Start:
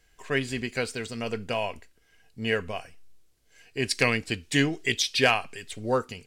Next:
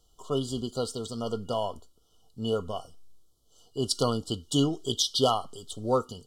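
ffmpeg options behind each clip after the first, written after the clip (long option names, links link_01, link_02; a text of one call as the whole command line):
ffmpeg -i in.wav -af "afftfilt=real='re*(1-between(b*sr/4096,1400,2900))':imag='im*(1-between(b*sr/4096,1400,2900))':win_size=4096:overlap=0.75" out.wav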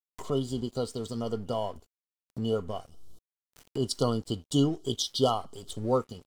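ffmpeg -i in.wav -af "aeval=exprs='sgn(val(0))*max(abs(val(0))-0.00282,0)':channel_layout=same,acompressor=mode=upward:threshold=-29dB:ratio=2.5,tiltshelf=frequency=720:gain=3,volume=-1.5dB" out.wav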